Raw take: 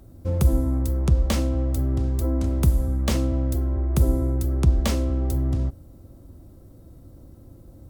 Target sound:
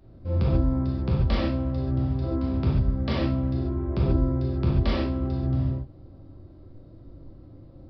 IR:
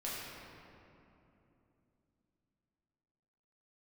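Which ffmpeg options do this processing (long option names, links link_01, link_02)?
-filter_complex "[1:a]atrim=start_sample=2205,afade=type=out:start_time=0.13:duration=0.01,atrim=end_sample=6174,asetrate=23373,aresample=44100[link_01];[0:a][link_01]afir=irnorm=-1:irlink=0,aresample=11025,aresample=44100,volume=-4.5dB"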